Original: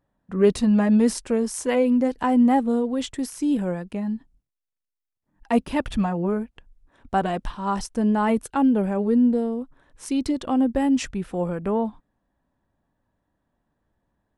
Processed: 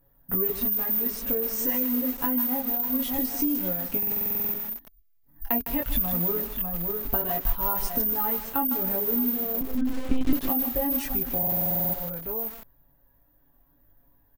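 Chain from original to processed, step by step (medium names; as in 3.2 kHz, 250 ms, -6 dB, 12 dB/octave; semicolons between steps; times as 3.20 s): careless resampling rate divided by 3×, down filtered, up zero stuff; chorus voices 4, 0.19 Hz, delay 22 ms, depth 2 ms; comb 7.2 ms, depth 72%; delay 600 ms -15.5 dB; 9.61–10.33 s: monotone LPC vocoder at 8 kHz 260 Hz; compression 16:1, threshold -28 dBFS, peak gain reduction 20.5 dB; bass shelf 77 Hz +10 dB; buffer glitch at 3.98/11.38 s, samples 2048, times 11; bit-crushed delay 157 ms, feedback 35%, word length 6-bit, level -8 dB; trim +5.5 dB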